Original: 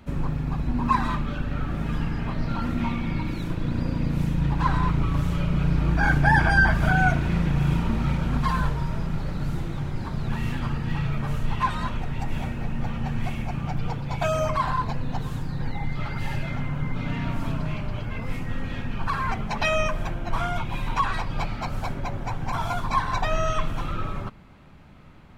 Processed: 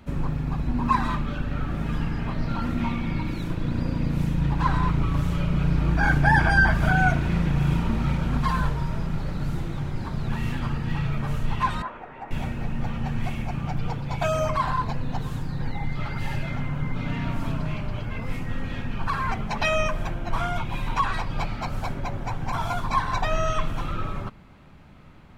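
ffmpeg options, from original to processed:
ffmpeg -i in.wav -filter_complex "[0:a]asettb=1/sr,asplit=3[link_01][link_02][link_03];[link_01]atrim=end=11.824[link_04];[link_02]atrim=start=11.82:end=12.31,asetpts=PTS-STARTPTS,afade=type=in:duration=0.004:curve=qsin,afade=type=out:start_time=0.486:duration=0.004:curve=qsin,acrossover=split=340 2100:gain=0.0631 1 0.0708[link_05][link_06][link_07];[link_05][link_06][link_07]amix=inputs=3:normalize=0[link_08];[link_03]atrim=start=12.306[link_09];[link_04][link_08]acrossfade=duration=0.004:curve1=hsin:curve2=qsin[link_10];[link_10][link_09]acrossfade=duration=0.004:curve1=qsin:curve2=hsin" out.wav

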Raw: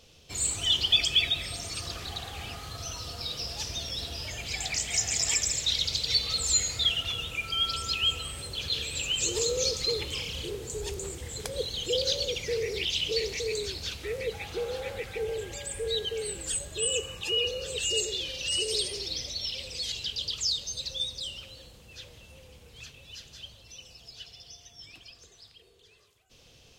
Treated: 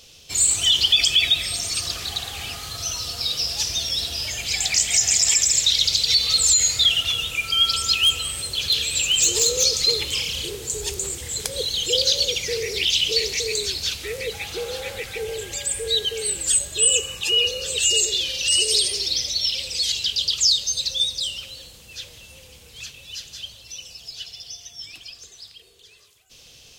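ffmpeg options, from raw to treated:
ffmpeg -i in.wav -filter_complex "[0:a]asettb=1/sr,asplit=3[link_01][link_02][link_03];[link_01]atrim=end=7.944[link_04];[link_02]atrim=start=7.94:end=9.64,asetpts=PTS-STARTPTS,afade=type=in:duration=0.004:curve=qsin,afade=type=out:start_time=1.696:duration=0.004:curve=qsin,volume=22dB,asoftclip=hard,volume=-22dB[link_05];[link_03]atrim=start=9.636[link_06];[link_04][link_05]acrossfade=duration=0.004:curve1=hsin:curve2=qsin[link_07];[link_07][link_06]acrossfade=duration=0.004:curve1=qsin:curve2=hsin,highshelf=frequency=2300:gain=11.5,alimiter=level_in=9dB:limit=-1dB:release=50:level=0:latency=1,volume=-7dB" out.wav

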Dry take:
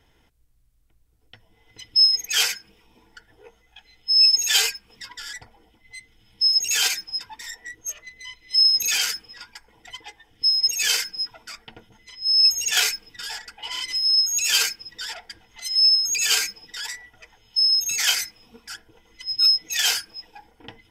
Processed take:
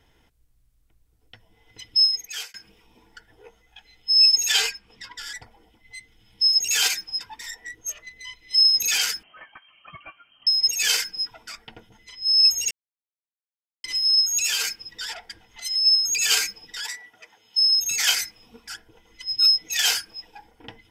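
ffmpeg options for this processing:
ffmpeg -i in.wav -filter_complex "[0:a]asettb=1/sr,asplit=3[link_01][link_02][link_03];[link_01]atrim=end=4.524[link_04];[link_02]atrim=start=4.52:end=5.17,asetpts=PTS-STARTPTS,afade=type=in:duration=0.004:curve=qsin,afade=type=out:start_time=0.646:duration=0.004:curve=qsin,highshelf=frequency=8700:gain=-11.5[link_05];[link_03]atrim=start=5.166[link_06];[link_04][link_05]acrossfade=duration=0.004:curve1=hsin:curve2=qsin[link_07];[link_07][link_06]acrossfade=duration=0.004:curve1=qsin:curve2=hsin,asettb=1/sr,asplit=3[link_08][link_09][link_10];[link_08]atrim=end=9.234[link_11];[link_09]atrim=start=9.23:end=10.47,asetpts=PTS-STARTPTS,afade=type=in:duration=0.004:curve=qsin,afade=type=out:start_time=1.236:duration=0.004:curve=qsin,lowpass=frequency=2700:width_type=q:width=0.5098,lowpass=frequency=2700:width_type=q:width=0.6013,lowpass=frequency=2700:width_type=q:width=0.9,lowpass=frequency=2700:width_type=q:width=2.563,afreqshift=-3200[link_12];[link_10]atrim=start=10.466[link_13];[link_11][link_12]acrossfade=duration=0.004:curve1=hsin:curve2=qsin[link_14];[link_14][link_13]acrossfade=duration=0.004:curve1=qsin:curve2=hsin,asplit=3[link_15][link_16][link_17];[link_15]afade=type=out:start_time=14.46:duration=0.02[link_18];[link_16]acompressor=threshold=-20dB:ratio=6:attack=3.2:release=140:knee=1:detection=peak,afade=type=in:start_time=14.46:duration=0.02,afade=type=out:start_time=15.85:duration=0.02[link_19];[link_17]afade=type=in:start_time=15.85:duration=0.02[link_20];[link_18][link_19][link_20]amix=inputs=3:normalize=0,asettb=1/sr,asplit=3[link_21][link_22][link_23];[link_21]atrim=end=16.844[link_24];[link_22]atrim=start=16.84:end=17.79,asetpts=PTS-STARTPTS,afade=type=in:duration=0.004:curve=qsin,afade=type=out:start_time=0.946:duration=0.004:curve=qsin,highpass=220[link_25];[link_23]atrim=start=17.786[link_26];[link_24][link_25]acrossfade=duration=0.004:curve1=hsin:curve2=qsin[link_27];[link_27][link_26]acrossfade=duration=0.004:curve1=qsin:curve2=hsin,asplit=4[link_28][link_29][link_30][link_31];[link_28]atrim=end=2.54,asetpts=PTS-STARTPTS,afade=type=out:start_time=1.88:duration=0.66[link_32];[link_29]atrim=start=2.54:end=12.71,asetpts=PTS-STARTPTS,afade=type=in:duration=0.004:curve=hsin,afade=type=out:start_time=10.166:duration=0.004:curve=hsin[link_33];[link_30]atrim=start=12.71:end=13.84,asetpts=PTS-STARTPTS,volume=0[link_34];[link_31]atrim=start=13.84,asetpts=PTS-STARTPTS,afade=type=in:duration=0.004:curve=hsin[link_35];[link_32][link_33][link_34][link_35]concat=n=4:v=0:a=1" out.wav

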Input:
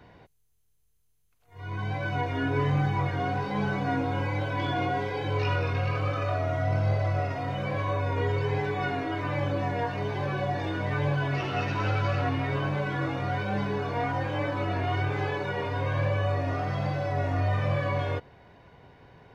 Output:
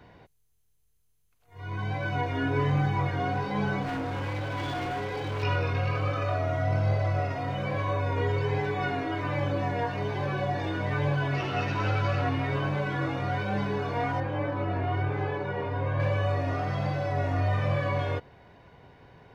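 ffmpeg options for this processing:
ffmpeg -i in.wav -filter_complex "[0:a]asettb=1/sr,asplit=3[link_01][link_02][link_03];[link_01]atrim=end=3.824[link_04];[link_02]atrim=start=3.82:end=5.43,asetpts=PTS-STARTPTS,afade=type=in:duration=0.004:curve=qsin,afade=type=out:start_time=1.606:duration=0.004:curve=qsin,asoftclip=type=hard:threshold=-29dB[link_05];[link_03]atrim=start=5.426[link_06];[link_04][link_05]acrossfade=duration=0.004:curve1=hsin:curve2=qsin[link_07];[link_07][link_06]acrossfade=duration=0.004:curve1=qsin:curve2=hsin,asettb=1/sr,asplit=3[link_08][link_09][link_10];[link_08]atrim=end=14.204[link_11];[link_09]atrim=start=14.2:end=16,asetpts=PTS-STARTPTS,afade=type=in:duration=0.004:curve=qsin,afade=type=out:start_time=1.796:duration=0.004:curve=qsin,lowpass=frequency=1500:poles=1[link_12];[link_10]atrim=start=15.996[link_13];[link_11][link_12]acrossfade=duration=0.004:curve1=hsin:curve2=qsin[link_14];[link_14][link_13]acrossfade=duration=0.004:curve1=qsin:curve2=hsin" out.wav

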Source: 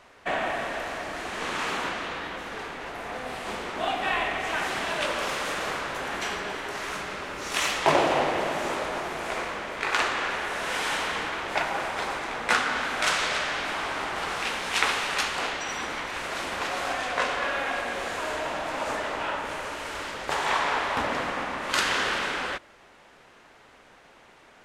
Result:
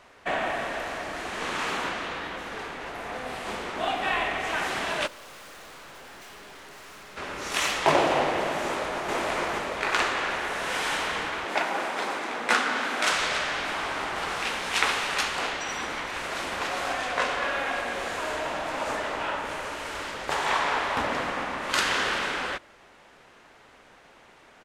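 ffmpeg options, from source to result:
ffmpeg -i in.wav -filter_complex "[0:a]asplit=3[link_01][link_02][link_03];[link_01]afade=type=out:start_time=5.06:duration=0.02[link_04];[link_02]aeval=exprs='(tanh(178*val(0)+0.3)-tanh(0.3))/178':channel_layout=same,afade=type=in:start_time=5.06:duration=0.02,afade=type=out:start_time=7.16:duration=0.02[link_05];[link_03]afade=type=in:start_time=7.16:duration=0.02[link_06];[link_04][link_05][link_06]amix=inputs=3:normalize=0,asplit=2[link_07][link_08];[link_08]afade=type=in:start_time=8.63:duration=0.01,afade=type=out:start_time=9.13:duration=0.01,aecho=0:1:450|900|1350|1800|2250|2700|3150|3600|4050:0.944061|0.566437|0.339862|0.203917|0.12235|0.0734102|0.0440461|0.0264277|0.0158566[link_09];[link_07][link_09]amix=inputs=2:normalize=0,asettb=1/sr,asplit=3[link_10][link_11][link_12];[link_10]atrim=end=11.454[link_13];[link_11]atrim=start=11.45:end=13.13,asetpts=PTS-STARTPTS,afade=type=in:duration=0.004:curve=qsin,afade=type=out:start_time=1.676:duration=0.004:curve=qsin,lowshelf=frequency=150:width_type=q:width=1.5:gain=-13.5[link_14];[link_12]atrim=start=13.126[link_15];[link_13][link_14]acrossfade=duration=0.004:curve1=hsin:curve2=qsin[link_16];[link_16][link_15]acrossfade=duration=0.004:curve1=qsin:curve2=hsin" out.wav

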